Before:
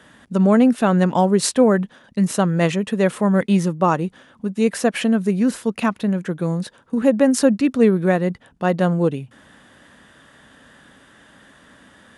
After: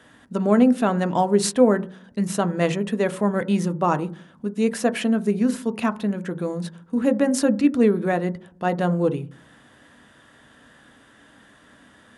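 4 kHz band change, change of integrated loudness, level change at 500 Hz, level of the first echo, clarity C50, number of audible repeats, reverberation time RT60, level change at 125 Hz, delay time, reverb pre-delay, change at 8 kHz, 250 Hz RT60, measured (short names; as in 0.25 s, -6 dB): -3.5 dB, -3.5 dB, -3.0 dB, none, 20.0 dB, none, 0.45 s, -5.5 dB, none, 3 ms, -3.5 dB, 0.70 s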